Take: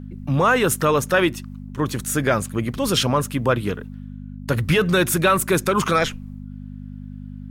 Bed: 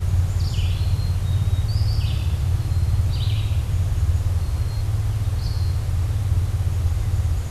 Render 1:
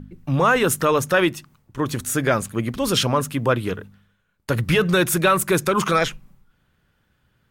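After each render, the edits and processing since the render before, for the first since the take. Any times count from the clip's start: de-hum 50 Hz, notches 5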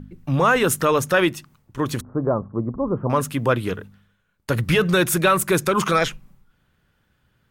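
2.01–3.10 s: elliptic low-pass 1.1 kHz, stop band 70 dB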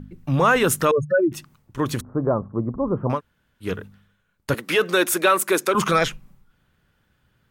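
0.91–1.32 s: spectral contrast enhancement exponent 3.6; 3.16–3.65 s: room tone, crossfade 0.10 s; 4.54–5.75 s: high-pass 270 Hz 24 dB/octave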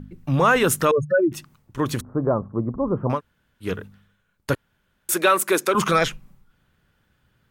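4.55–5.09 s: room tone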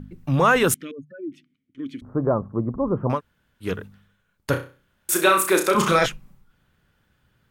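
0.74–2.02 s: vowel filter i; 4.50–6.06 s: flutter echo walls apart 5.5 m, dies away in 0.34 s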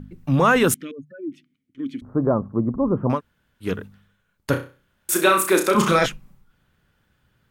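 dynamic bell 240 Hz, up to +5 dB, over -36 dBFS, Q 1.7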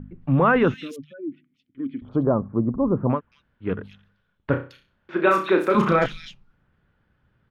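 distance through air 280 m; bands offset in time lows, highs 220 ms, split 3.2 kHz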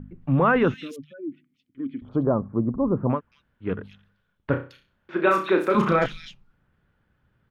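trim -1.5 dB

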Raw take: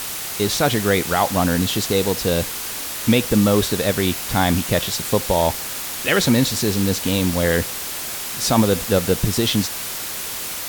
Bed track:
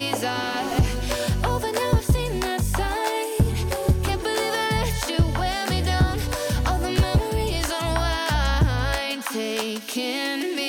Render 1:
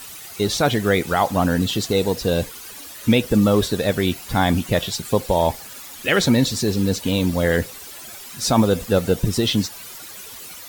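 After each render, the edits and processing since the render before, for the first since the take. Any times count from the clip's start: noise reduction 13 dB, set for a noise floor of -29 dBFS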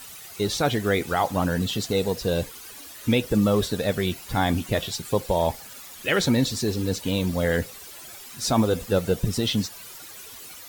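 flange 0.53 Hz, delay 1.3 ms, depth 1.6 ms, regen -78%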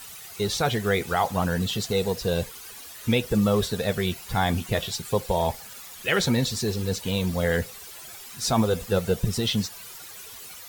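peaking EQ 290 Hz -13.5 dB 0.24 oct; band-stop 580 Hz, Q 15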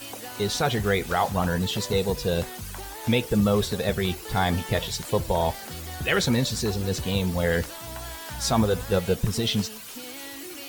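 add bed track -15 dB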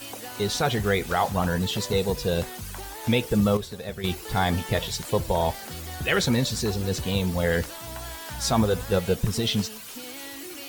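3.57–4.04 s: gain -9 dB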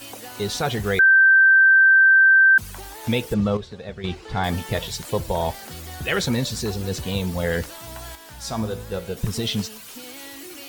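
0.99–2.58 s: bleep 1.56 kHz -10 dBFS; 3.34–4.44 s: distance through air 120 m; 8.15–9.17 s: feedback comb 55 Hz, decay 0.7 s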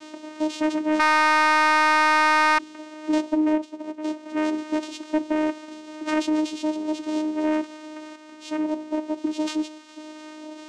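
vocoder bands 4, saw 308 Hz; saturation -11 dBFS, distortion -11 dB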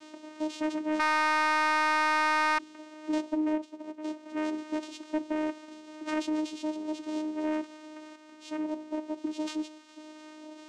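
trim -7.5 dB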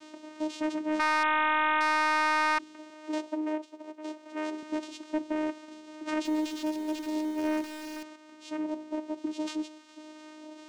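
1.23–1.81 s: careless resampling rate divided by 6×, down none, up filtered; 2.90–4.63 s: high-pass 340 Hz; 6.25–8.03 s: jump at every zero crossing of -38.5 dBFS

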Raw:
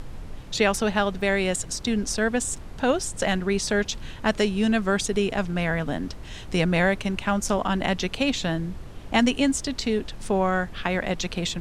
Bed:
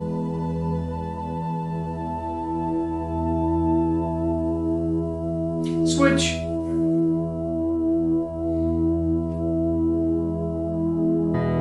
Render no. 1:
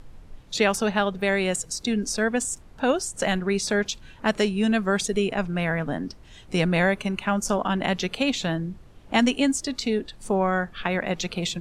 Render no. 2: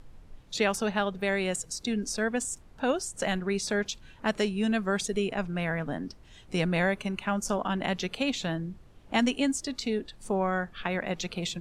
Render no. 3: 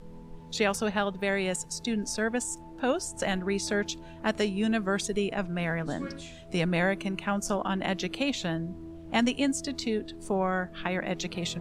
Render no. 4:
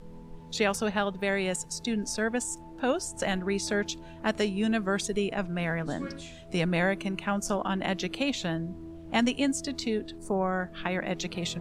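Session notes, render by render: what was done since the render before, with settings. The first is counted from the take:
noise print and reduce 10 dB
trim -5 dB
add bed -22 dB
10.18–10.60 s: peaking EQ 3.1 kHz -12.5 dB 0.95 oct

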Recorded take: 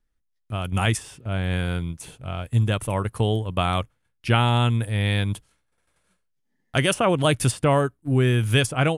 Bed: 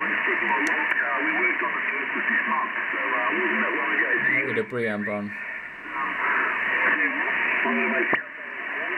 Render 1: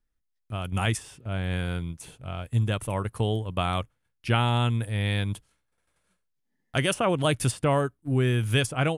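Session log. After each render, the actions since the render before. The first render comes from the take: trim -4 dB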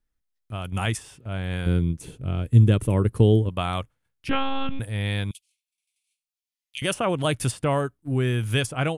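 1.66–3.49 s: resonant low shelf 530 Hz +9 dB, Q 1.5; 4.29–4.80 s: monotone LPC vocoder at 8 kHz 270 Hz; 5.31–6.82 s: elliptic high-pass 2.4 kHz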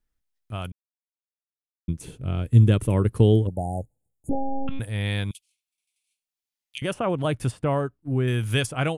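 0.72–1.88 s: mute; 3.47–4.68 s: brick-wall FIR band-stop 880–6600 Hz; 6.78–8.28 s: treble shelf 2.2 kHz -11 dB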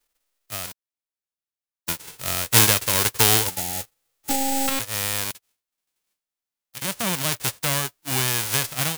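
formants flattened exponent 0.1; saturation -3 dBFS, distortion -21 dB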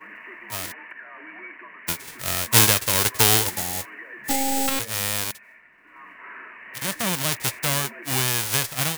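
add bed -17.5 dB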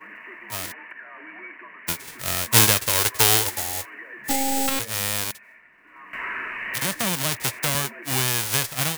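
2.89–3.94 s: peaking EQ 180 Hz -11.5 dB; 6.13–7.75 s: three bands compressed up and down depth 70%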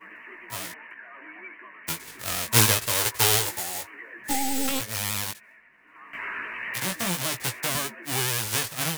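chorus 0.28 Hz, delay 16.5 ms, depth 2.3 ms; vibrato 9.8 Hz 59 cents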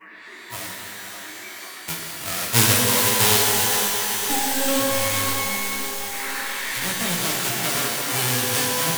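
thinning echo 515 ms, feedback 78%, high-pass 200 Hz, level -10 dB; pitch-shifted reverb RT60 2.4 s, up +12 st, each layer -2 dB, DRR 0 dB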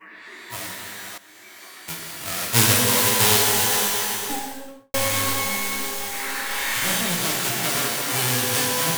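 1.18–2.89 s: fade in equal-power, from -15.5 dB; 3.99–4.94 s: studio fade out; 6.47–7.01 s: flutter echo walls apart 6.2 m, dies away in 0.82 s

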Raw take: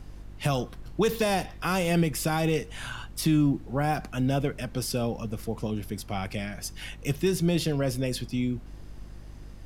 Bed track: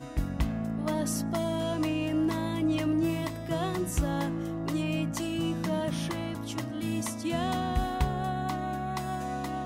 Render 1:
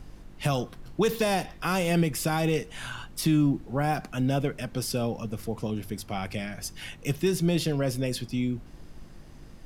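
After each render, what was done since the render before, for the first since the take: de-hum 50 Hz, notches 2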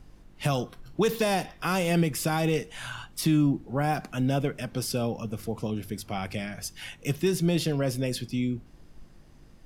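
noise print and reduce 6 dB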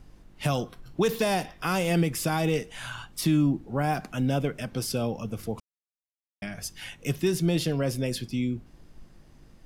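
5.60–6.42 s: mute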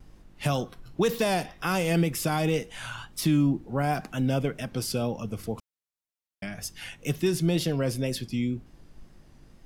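vibrato 2 Hz 54 cents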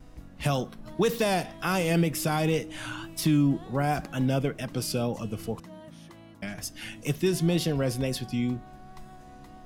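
add bed track -16 dB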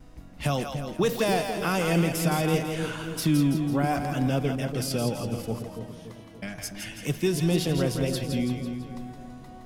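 two-band feedback delay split 540 Hz, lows 286 ms, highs 166 ms, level -6 dB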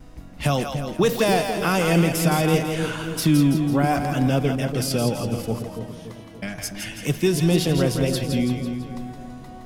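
trim +5 dB

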